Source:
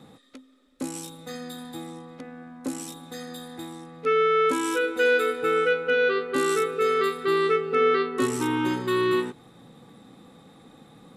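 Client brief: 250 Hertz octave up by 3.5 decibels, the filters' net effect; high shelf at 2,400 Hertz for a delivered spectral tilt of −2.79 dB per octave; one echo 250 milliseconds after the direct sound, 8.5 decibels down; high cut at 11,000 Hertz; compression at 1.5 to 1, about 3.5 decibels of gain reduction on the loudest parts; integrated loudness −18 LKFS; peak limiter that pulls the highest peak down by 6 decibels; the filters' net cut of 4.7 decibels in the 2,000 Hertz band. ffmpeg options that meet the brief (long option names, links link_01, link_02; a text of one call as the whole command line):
ffmpeg -i in.wav -af "lowpass=11000,equalizer=frequency=250:width_type=o:gain=5,equalizer=frequency=2000:width_type=o:gain=-3.5,highshelf=frequency=2400:gain=-7.5,acompressor=threshold=-27dB:ratio=1.5,alimiter=limit=-20dB:level=0:latency=1,aecho=1:1:250:0.376,volume=11.5dB" out.wav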